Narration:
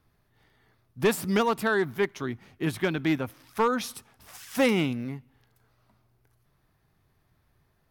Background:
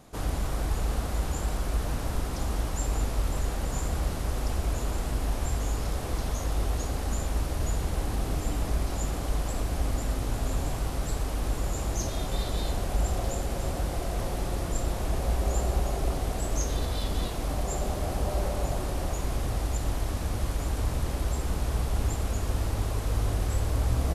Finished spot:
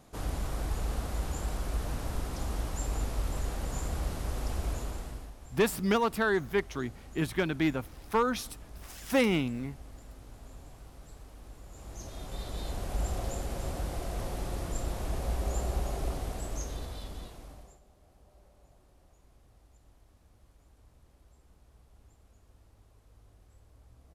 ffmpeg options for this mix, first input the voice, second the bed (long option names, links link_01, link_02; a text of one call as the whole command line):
ffmpeg -i stem1.wav -i stem2.wav -filter_complex "[0:a]adelay=4550,volume=-2.5dB[link_01];[1:a]volume=10.5dB,afade=type=out:start_time=4.69:duration=0.64:silence=0.16788,afade=type=in:start_time=11.68:duration=1.36:silence=0.177828,afade=type=out:start_time=16.03:duration=1.77:silence=0.0446684[link_02];[link_01][link_02]amix=inputs=2:normalize=0" out.wav